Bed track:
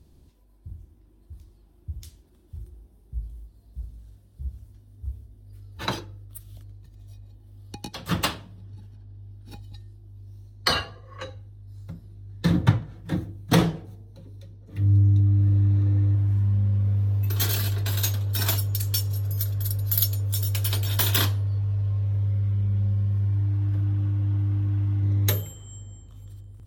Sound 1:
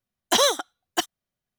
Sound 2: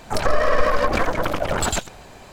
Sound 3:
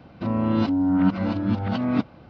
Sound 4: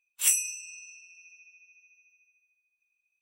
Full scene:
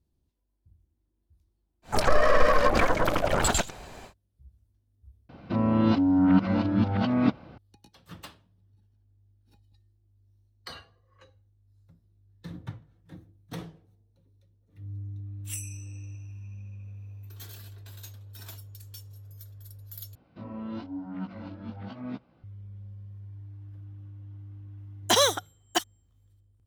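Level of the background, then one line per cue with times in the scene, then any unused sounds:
bed track −20 dB
0:01.82: mix in 2 −2 dB, fades 0.10 s
0:05.29: overwrite with 3 −0.5 dB
0:15.26: mix in 4 −14 dB + random phases in short frames
0:20.15: overwrite with 3 −12.5 dB + chorus effect 0.99 Hz, delay 15.5 ms, depth 7 ms
0:24.78: mix in 1 −2 dB

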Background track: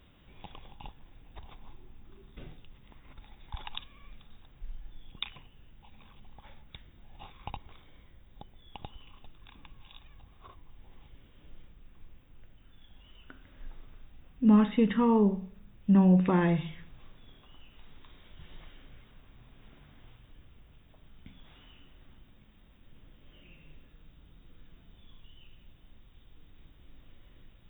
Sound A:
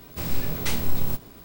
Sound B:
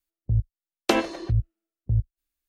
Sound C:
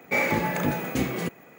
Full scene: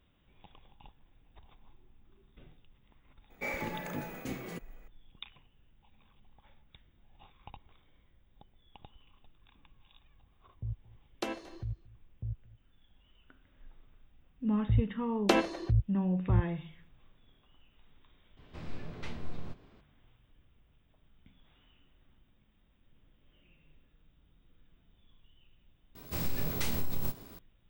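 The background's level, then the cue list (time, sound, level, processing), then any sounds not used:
background track −9.5 dB
0:03.30: mix in C −13 dB
0:10.33: mix in B −15 dB + single-tap delay 227 ms −21 dB
0:14.40: mix in B −4 dB + high-shelf EQ 5,400 Hz −4 dB
0:18.37: mix in A −12.5 dB + low-pass filter 3,100 Hz
0:25.95: mix in A −4.5 dB + downward compressor, threshold −21 dBFS

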